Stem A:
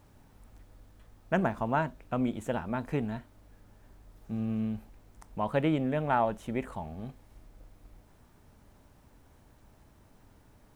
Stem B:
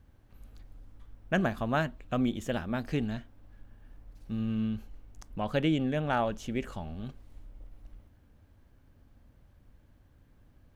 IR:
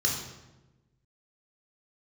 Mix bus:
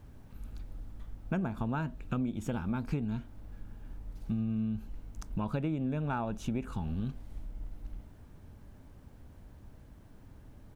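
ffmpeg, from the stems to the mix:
-filter_complex "[0:a]lowshelf=frequency=420:gain=11,volume=-4.5dB,asplit=2[link_01][link_02];[1:a]adelay=0.6,volume=2.5dB[link_03];[link_02]apad=whole_len=474510[link_04];[link_03][link_04]sidechaincompress=threshold=-32dB:ratio=8:attack=16:release=390[link_05];[link_01][link_05]amix=inputs=2:normalize=0,acompressor=threshold=-29dB:ratio=6"

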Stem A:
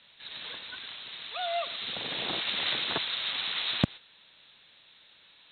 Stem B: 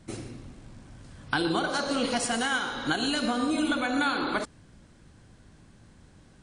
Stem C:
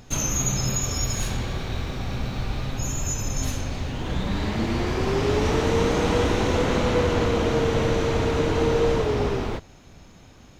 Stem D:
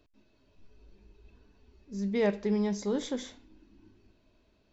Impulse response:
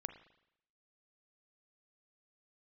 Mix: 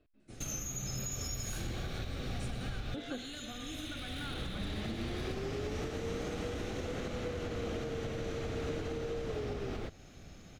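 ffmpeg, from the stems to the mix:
-filter_complex "[0:a]highpass=1000,volume=31.5dB,asoftclip=hard,volume=-31.5dB,adelay=1500,volume=-12.5dB[link_01];[1:a]adelay=200,volume=-18.5dB[link_02];[2:a]acompressor=threshold=-27dB:ratio=2,adynamicequalizer=threshold=0.00631:dfrequency=7900:dqfactor=0.7:tfrequency=7900:tqfactor=0.7:attack=5:release=100:ratio=0.375:range=3:mode=boostabove:tftype=highshelf,adelay=300,volume=-4dB[link_03];[3:a]lowpass=2700,alimiter=level_in=2dB:limit=-24dB:level=0:latency=1,volume=-2dB,volume=-3.5dB,asplit=3[link_04][link_05][link_06];[link_04]atrim=end=0.83,asetpts=PTS-STARTPTS,afade=type=out:start_time=0.826:duration=0.004:curve=hsin[link_07];[link_05]atrim=start=0.83:end=2.94,asetpts=PTS-STARTPTS,volume=0[link_08];[link_06]atrim=start=2.94,asetpts=PTS-STARTPTS,afade=type=in:duration=0.004:curve=hsin[link_09];[link_07][link_08][link_09]concat=n=3:v=0:a=1,asplit=2[link_10][link_11];[link_11]apad=whole_len=480492[link_12];[link_03][link_12]sidechaincompress=threshold=-56dB:ratio=8:attack=9.2:release=1160[link_13];[link_01][link_02][link_13][link_10]amix=inputs=4:normalize=0,equalizer=frequency=960:width_type=o:width=0.23:gain=-13,alimiter=level_in=4.5dB:limit=-24dB:level=0:latency=1:release=322,volume=-4.5dB"

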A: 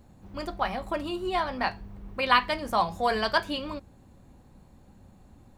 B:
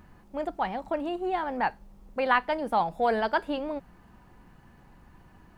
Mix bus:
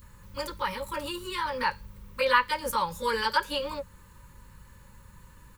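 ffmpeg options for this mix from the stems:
ffmpeg -i stem1.wav -i stem2.wav -filter_complex "[0:a]aemphasis=mode=production:type=75kf,acompressor=threshold=-26dB:ratio=6,aeval=exprs='val(0)+0.00224*(sin(2*PI*50*n/s)+sin(2*PI*2*50*n/s)/2+sin(2*PI*3*50*n/s)/3+sin(2*PI*4*50*n/s)/4+sin(2*PI*5*50*n/s)/5)':channel_layout=same,volume=-1.5dB[link_01];[1:a]equalizer=frequency=630:width_type=o:width=0.48:gain=11.5,adelay=22,volume=1.5dB[link_02];[link_01][link_02]amix=inputs=2:normalize=0,asuperstop=centerf=700:order=12:qfactor=2.4,equalizer=frequency=300:width=1.2:gain=-13" out.wav

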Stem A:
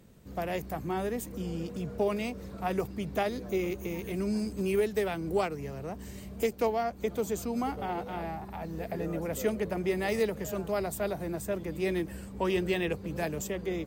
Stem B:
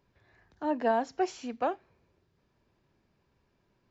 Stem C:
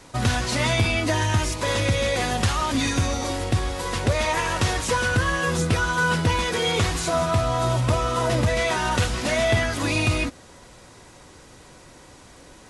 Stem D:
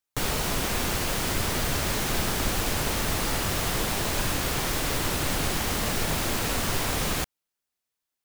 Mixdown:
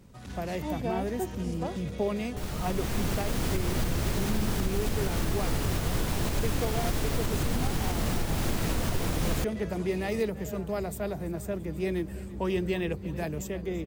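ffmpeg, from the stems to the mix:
ffmpeg -i stem1.wav -i stem2.wav -i stem3.wav -i stem4.wav -filter_complex "[0:a]lowshelf=frequency=240:gain=8.5,volume=-3dB,asplit=2[link_01][link_02];[link_02]volume=-18dB[link_03];[1:a]tiltshelf=frequency=860:gain=7,volume=-8.5dB,asplit=2[link_04][link_05];[2:a]asoftclip=type=tanh:threshold=-21dB,volume=-19.5dB[link_06];[3:a]lowshelf=frequency=390:gain=11,adelay=2200,volume=-4dB[link_07];[link_05]apad=whole_len=460665[link_08];[link_07][link_08]sidechaincompress=threshold=-54dB:ratio=6:attack=30:release=1090[link_09];[link_03]aecho=0:1:337|674|1011|1348|1685|2022|2359|2696|3033:1|0.58|0.336|0.195|0.113|0.0656|0.0381|0.0221|0.0128[link_10];[link_01][link_04][link_06][link_09][link_10]amix=inputs=5:normalize=0,alimiter=limit=-18dB:level=0:latency=1:release=221" out.wav

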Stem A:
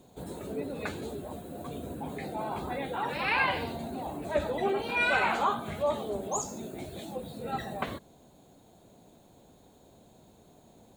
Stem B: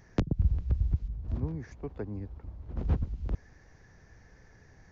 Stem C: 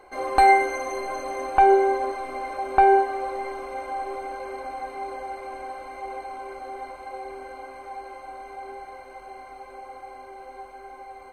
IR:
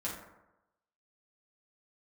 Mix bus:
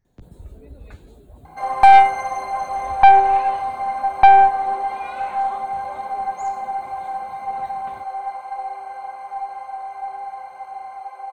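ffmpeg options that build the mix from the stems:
-filter_complex "[0:a]adelay=50,volume=-11.5dB[link_01];[1:a]volume=-19.5dB[link_02];[2:a]highpass=frequency=800:width_type=q:width=3.9,adelay=1450,volume=-0.5dB[link_03];[link_01][link_02][link_03]amix=inputs=3:normalize=0,lowshelf=frequency=93:gain=11,aeval=exprs='(tanh(1.41*val(0)+0.4)-tanh(0.4))/1.41':channel_layout=same"

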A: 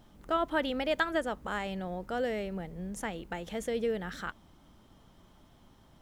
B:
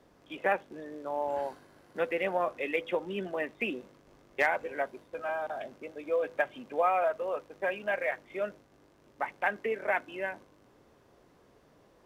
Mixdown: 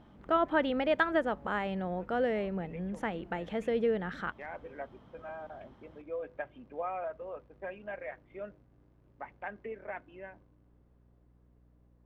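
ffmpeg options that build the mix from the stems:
ffmpeg -i stem1.wav -i stem2.wav -filter_complex "[0:a]highpass=frequency=110:poles=1,bass=frequency=250:gain=1,treble=frequency=4000:gain=-12,volume=2.5dB,asplit=2[link_01][link_02];[1:a]aemphasis=mode=reproduction:type=bsi,dynaudnorm=framelen=480:gausssize=11:maxgain=5dB,volume=-15dB[link_03];[link_02]apad=whole_len=531601[link_04];[link_03][link_04]sidechaincompress=threshold=-46dB:ratio=4:attack=6.2:release=236[link_05];[link_01][link_05]amix=inputs=2:normalize=0,highshelf=frequency=5700:gain=-11.5,aeval=exprs='val(0)+0.000708*(sin(2*PI*60*n/s)+sin(2*PI*2*60*n/s)/2+sin(2*PI*3*60*n/s)/3+sin(2*PI*4*60*n/s)/4+sin(2*PI*5*60*n/s)/5)':channel_layout=same" out.wav

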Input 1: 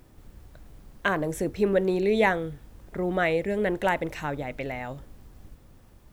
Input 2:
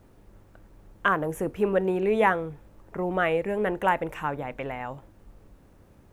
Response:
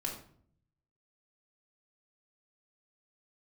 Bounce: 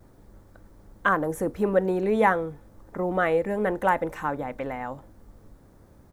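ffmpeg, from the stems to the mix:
-filter_complex "[0:a]volume=-10dB[link_01];[1:a]adelay=4.2,volume=1.5dB[link_02];[link_01][link_02]amix=inputs=2:normalize=0,equalizer=frequency=2700:width_type=o:width=0.58:gain=-9"

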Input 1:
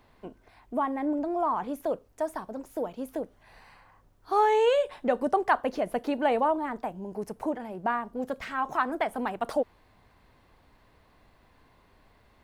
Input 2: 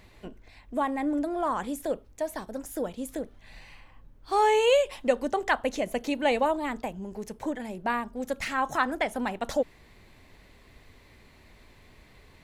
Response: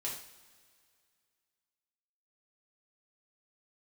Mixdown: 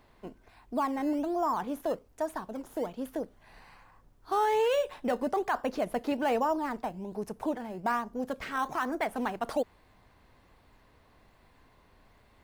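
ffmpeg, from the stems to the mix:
-filter_complex "[0:a]volume=-1dB[link_01];[1:a]bandreject=frequency=50:width_type=h:width=6,bandreject=frequency=100:width_type=h:width=6,bandreject=frequency=150:width_type=h:width=6,bandreject=frequency=200:width_type=h:width=6,acrusher=samples=13:mix=1:aa=0.000001:lfo=1:lforange=13:lforate=1.2,volume=-16.5dB[link_02];[link_01][link_02]amix=inputs=2:normalize=0,alimiter=limit=-20dB:level=0:latency=1:release=12"

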